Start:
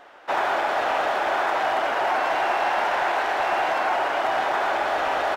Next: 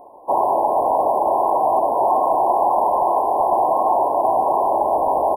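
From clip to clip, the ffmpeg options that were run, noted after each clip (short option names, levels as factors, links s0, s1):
-af "afftfilt=real='re*(1-between(b*sr/4096,1100,9200))':imag='im*(1-between(b*sr/4096,1100,9200))':win_size=4096:overlap=0.75,volume=2.24"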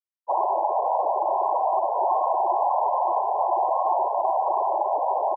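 -filter_complex "[0:a]crystalizer=i=8:c=0,afftfilt=real='re*gte(hypot(re,im),0.282)':imag='im*gte(hypot(re,im),0.282)':win_size=1024:overlap=0.75,acrossover=split=2600[s0][s1];[s1]acompressor=threshold=0.00112:ratio=4:attack=1:release=60[s2];[s0][s2]amix=inputs=2:normalize=0,volume=0.398"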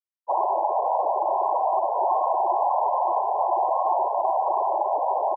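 -af anull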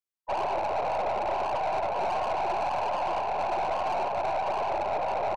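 -filter_complex "[0:a]acrossover=split=520[s0][s1];[s1]asoftclip=type=tanh:threshold=0.0299[s2];[s0][s2]amix=inputs=2:normalize=0,aeval=exprs='0.0841*(cos(1*acos(clip(val(0)/0.0841,-1,1)))-cos(1*PI/2))+0.0188*(cos(2*acos(clip(val(0)/0.0841,-1,1)))-cos(2*PI/2))+0.00211*(cos(7*acos(clip(val(0)/0.0841,-1,1)))-cos(7*PI/2))':c=same"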